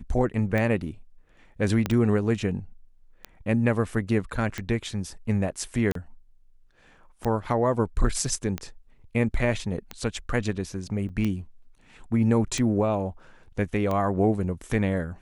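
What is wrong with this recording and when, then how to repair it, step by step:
tick 45 rpm -16 dBFS
1.86 pop -12 dBFS
5.92–5.95 gap 33 ms
11.09–11.1 gap 7.3 ms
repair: de-click; interpolate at 5.92, 33 ms; interpolate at 11.09, 7.3 ms

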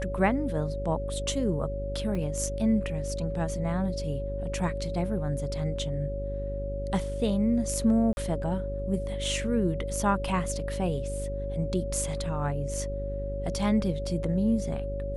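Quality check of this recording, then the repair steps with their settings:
buzz 50 Hz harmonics 9 -34 dBFS
tone 560 Hz -34 dBFS
2.15 gap 3.1 ms
8.13–8.17 gap 41 ms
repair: notch 560 Hz, Q 30; de-hum 50 Hz, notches 9; interpolate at 2.15, 3.1 ms; interpolate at 8.13, 41 ms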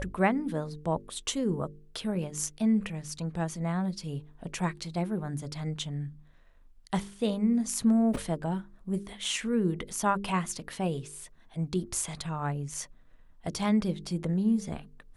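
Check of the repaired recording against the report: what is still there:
none

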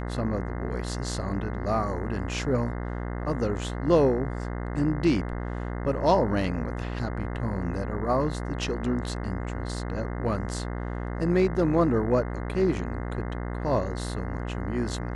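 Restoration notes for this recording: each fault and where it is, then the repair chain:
buzz 60 Hz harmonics 35 -32 dBFS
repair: de-hum 60 Hz, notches 35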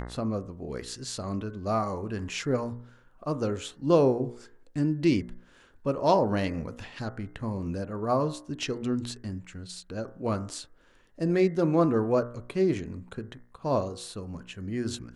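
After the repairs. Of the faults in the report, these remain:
none

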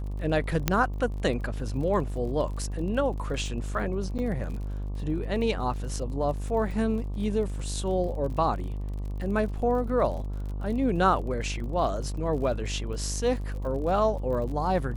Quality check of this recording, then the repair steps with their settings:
buzz 50 Hz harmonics 24 -32 dBFS
crackle 41/s -37 dBFS
0.68 pop -7 dBFS
4.18–4.19 gap 8.5 ms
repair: de-click; de-hum 50 Hz, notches 24; interpolate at 4.18, 8.5 ms

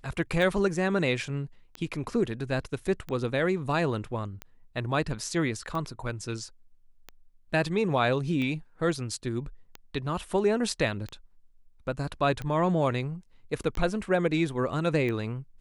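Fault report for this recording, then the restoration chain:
tick 45 rpm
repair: de-click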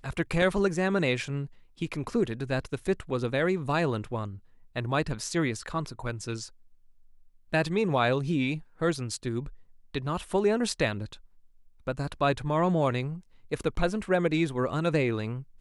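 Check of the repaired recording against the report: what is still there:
none

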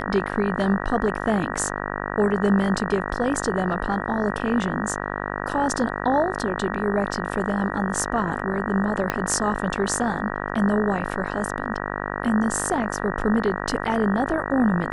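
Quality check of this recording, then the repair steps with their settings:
buzz 50 Hz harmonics 38 -29 dBFS
9.1 pop -8 dBFS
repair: de-click; de-hum 50 Hz, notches 38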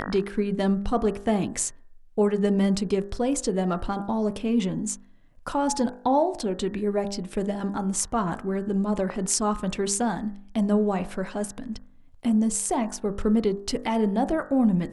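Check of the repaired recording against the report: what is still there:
9.1 pop

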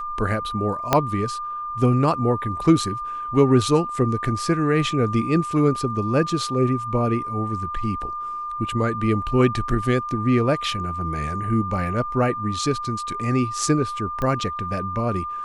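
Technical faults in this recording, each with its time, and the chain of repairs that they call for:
tone 1200 Hz -27 dBFS
0.93 pop -2 dBFS
14.22 pop -14 dBFS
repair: de-click; notch 1200 Hz, Q 30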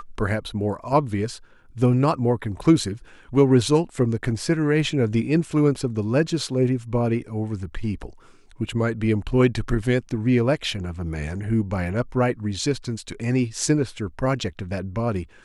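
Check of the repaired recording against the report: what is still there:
0.93 pop

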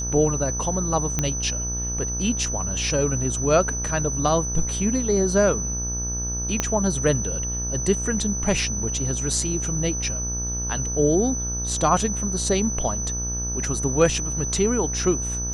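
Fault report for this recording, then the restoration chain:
buzz 60 Hz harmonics 29 -30 dBFS
tone 6000 Hz -27 dBFS
1.19 pop -8 dBFS
6.6 pop -7 dBFS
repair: de-click; de-hum 60 Hz, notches 29; notch 6000 Hz, Q 30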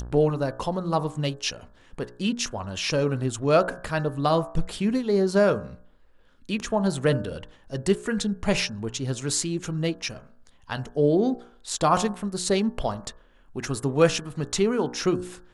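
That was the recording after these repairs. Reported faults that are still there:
6.6 pop

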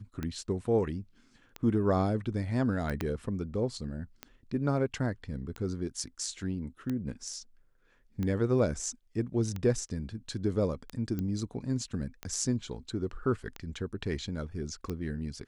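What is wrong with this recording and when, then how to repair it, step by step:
tick 45 rpm -22 dBFS
3.01 pop -17 dBFS
11.19 pop -22 dBFS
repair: de-click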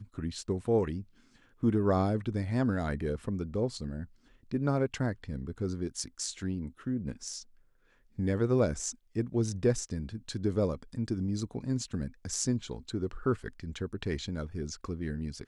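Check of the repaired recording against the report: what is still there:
3.01 pop

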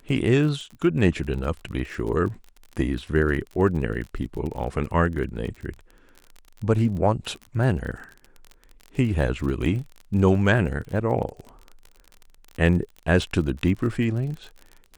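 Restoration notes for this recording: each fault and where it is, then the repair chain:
crackle 36/s -32 dBFS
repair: de-click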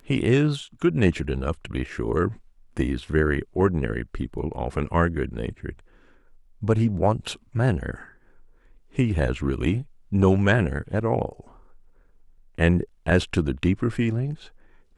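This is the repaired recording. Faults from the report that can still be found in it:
none

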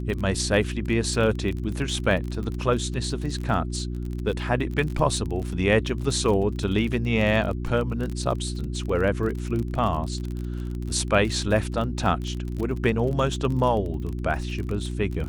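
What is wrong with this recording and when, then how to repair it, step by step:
crackle 32/s -29 dBFS
hum 60 Hz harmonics 6 -30 dBFS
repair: de-click; de-hum 60 Hz, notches 6

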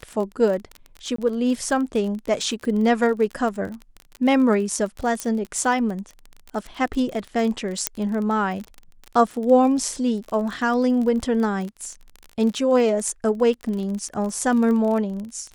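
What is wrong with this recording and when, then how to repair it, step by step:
crackle 32/s -28 dBFS
1.16–1.18 gap 24 ms
5.2 pop -12 dBFS
7.87 pop -2 dBFS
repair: de-click; interpolate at 1.16, 24 ms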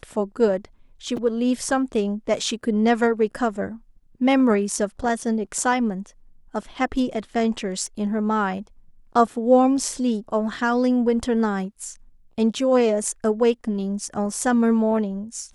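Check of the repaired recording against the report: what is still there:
7.87 pop

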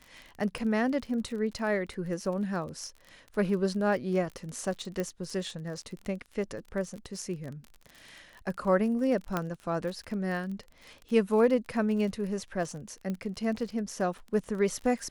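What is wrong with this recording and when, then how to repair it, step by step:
crackle 38/s -37 dBFS
5 pop -19 dBFS
9.37 pop -15 dBFS
13.1 pop -23 dBFS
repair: de-click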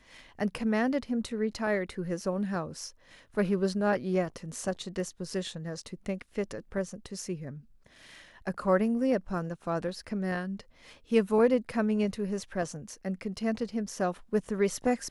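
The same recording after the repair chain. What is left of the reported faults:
5 pop

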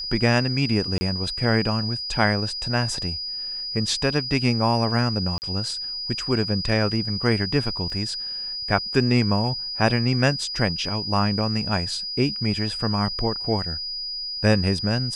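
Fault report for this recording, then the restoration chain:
tone 4900 Hz -28 dBFS
0.98–1.01 gap 30 ms
5.38–5.42 gap 39 ms
7.9 gap 2.2 ms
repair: notch 4900 Hz, Q 30; interpolate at 0.98, 30 ms; interpolate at 5.38, 39 ms; interpolate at 7.9, 2.2 ms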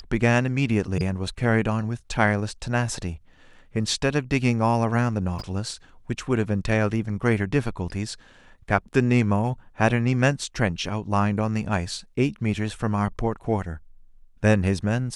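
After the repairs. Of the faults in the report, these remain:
none

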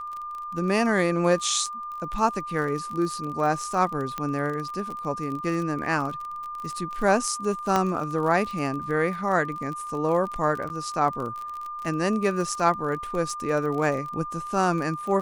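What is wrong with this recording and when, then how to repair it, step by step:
crackle 31/s -31 dBFS
tone 1200 Hz -32 dBFS
4.18 pop -16 dBFS
7.76 pop -10 dBFS
10.69–10.7 gap 9.6 ms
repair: de-click; notch 1200 Hz, Q 30; interpolate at 10.69, 9.6 ms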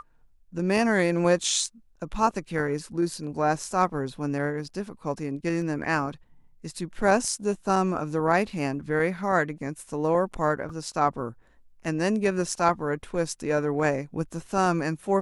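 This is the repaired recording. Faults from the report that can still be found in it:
4.18 pop

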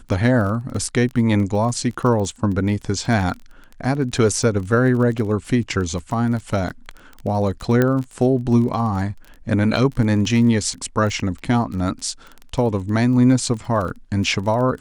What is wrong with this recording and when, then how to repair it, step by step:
crackle 22/s -27 dBFS
7.82 pop -6 dBFS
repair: de-click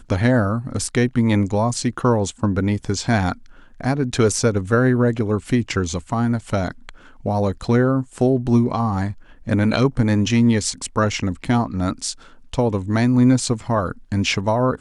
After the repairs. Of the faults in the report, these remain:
none

